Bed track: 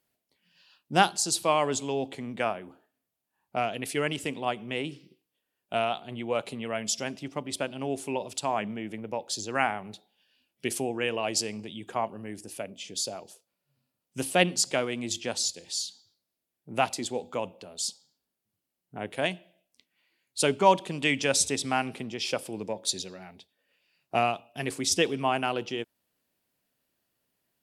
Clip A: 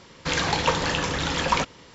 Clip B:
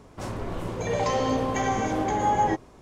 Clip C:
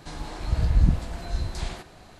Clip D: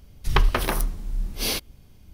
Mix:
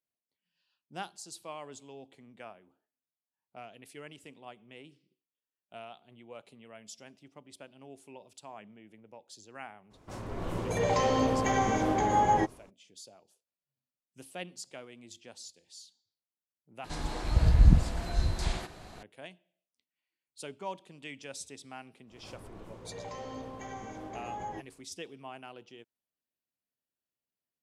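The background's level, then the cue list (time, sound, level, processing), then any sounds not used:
bed track −18.5 dB
0:09.90: mix in B −9.5 dB, fades 0.02 s + automatic gain control gain up to 8 dB
0:16.84: mix in C
0:22.05: mix in B −17 dB, fades 0.05 s + background raised ahead of every attack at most 91 dB per second
not used: A, D

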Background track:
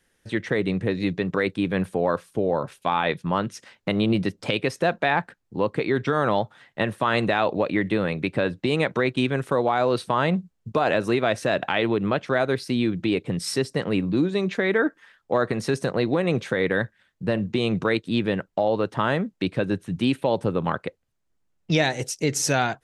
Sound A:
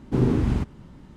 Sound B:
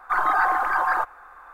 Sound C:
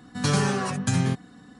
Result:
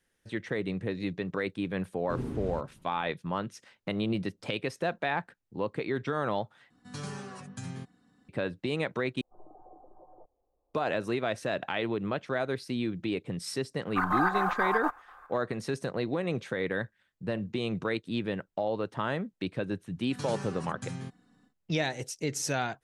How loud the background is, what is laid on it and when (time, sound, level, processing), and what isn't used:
background track −8.5 dB
0:01.97: mix in A −14.5 dB
0:06.70: overwrite with C −16.5 dB
0:09.21: overwrite with B −16 dB + Butterworth low-pass 580 Hz
0:13.86: mix in B −6 dB + square-wave tremolo 4.1 Hz, depth 60%, duty 75%
0:19.95: mix in C −15.5 dB, fades 0.10 s

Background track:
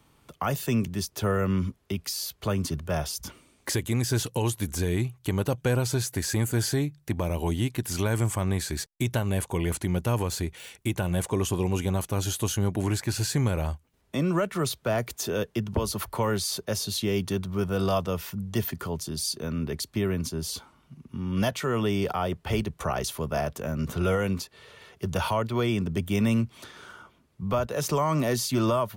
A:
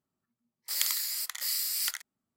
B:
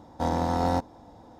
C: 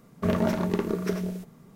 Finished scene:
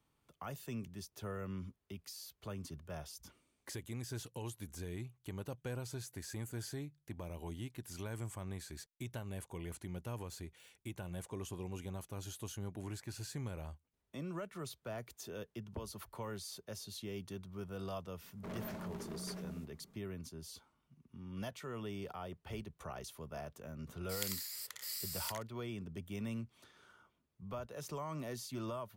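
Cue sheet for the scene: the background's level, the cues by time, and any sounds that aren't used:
background track −17.5 dB
0:18.21: mix in C −13.5 dB + gain into a clipping stage and back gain 29 dB
0:23.41: mix in A −11.5 dB
not used: B

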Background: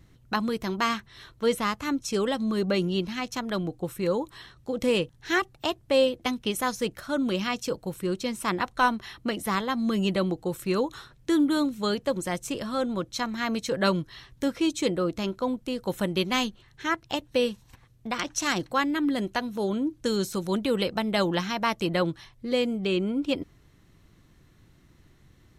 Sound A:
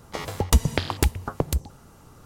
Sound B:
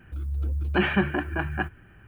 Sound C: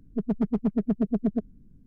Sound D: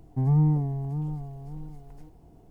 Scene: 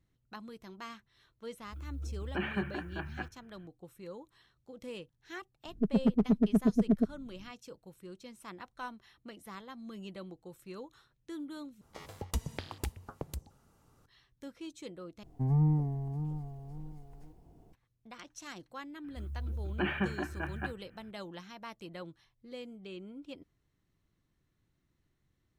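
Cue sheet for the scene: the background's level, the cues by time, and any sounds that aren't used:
background −19.5 dB
0:01.60: mix in B −12 dB
0:05.65: mix in C −1 dB
0:11.81: overwrite with A −16 dB
0:15.23: overwrite with D −5.5 dB
0:19.04: mix in B −9.5 dB

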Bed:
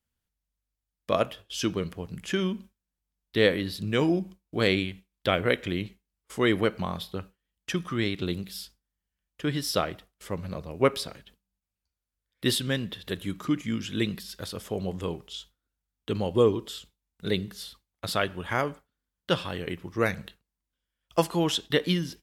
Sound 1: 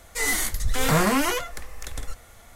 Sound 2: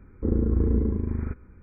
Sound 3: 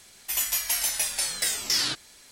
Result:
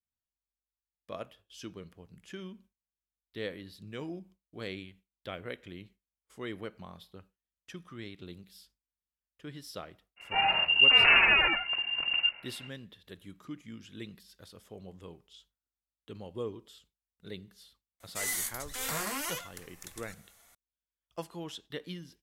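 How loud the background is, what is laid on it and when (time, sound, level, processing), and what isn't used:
bed −16 dB
0:10.16: mix in 1 −1.5 dB, fades 0.05 s + voice inversion scrambler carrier 2,800 Hz
0:18.00: mix in 1 −14 dB + spectral tilt +2.5 dB per octave
not used: 2, 3

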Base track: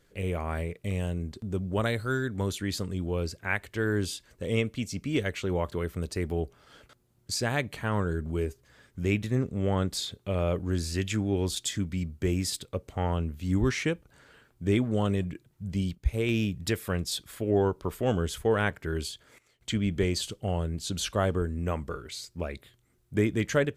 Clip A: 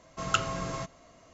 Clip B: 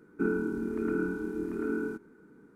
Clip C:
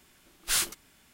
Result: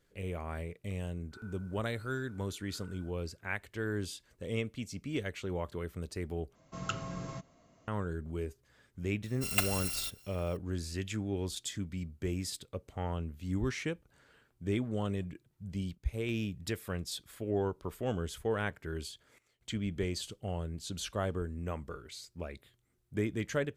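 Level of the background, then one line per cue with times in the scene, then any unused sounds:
base track −7.5 dB
0:01.13: mix in B −14 dB + high-pass filter 1,100 Hz
0:06.55: overwrite with A −10.5 dB + parametric band 160 Hz +8 dB 2.3 octaves
0:09.24: mix in A −3 dB + samples in bit-reversed order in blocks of 256 samples
not used: C

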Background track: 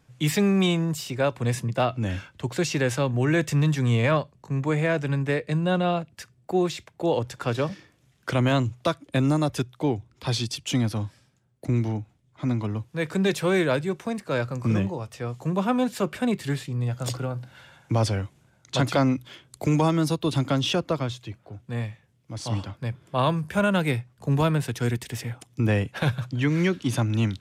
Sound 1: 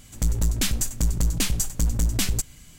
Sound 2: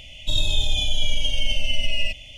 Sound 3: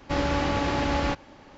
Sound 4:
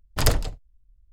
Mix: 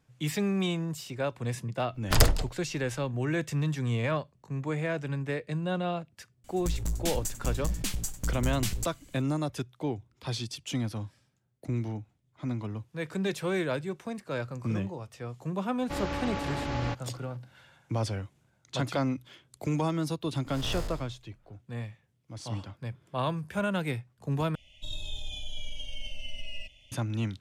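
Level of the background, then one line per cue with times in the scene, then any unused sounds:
background track −7.5 dB
0:01.94: mix in 4 −0.5 dB + one half of a high-frequency compander encoder only
0:06.44: mix in 1 −8.5 dB
0:15.80: mix in 3 −8 dB
0:20.46: mix in 4 −7.5 dB + spectrum smeared in time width 269 ms
0:24.55: overwrite with 2 −16 dB

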